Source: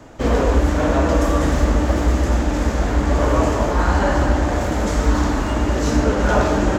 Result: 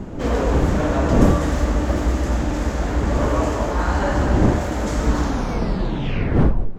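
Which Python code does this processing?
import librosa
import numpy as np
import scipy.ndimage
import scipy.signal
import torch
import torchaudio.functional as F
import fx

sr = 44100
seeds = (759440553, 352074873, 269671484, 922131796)

y = fx.tape_stop_end(x, sr, length_s=1.58)
y = fx.dmg_wind(y, sr, seeds[0], corner_hz=260.0, level_db=-21.0)
y = y * 10.0 ** (-3.0 / 20.0)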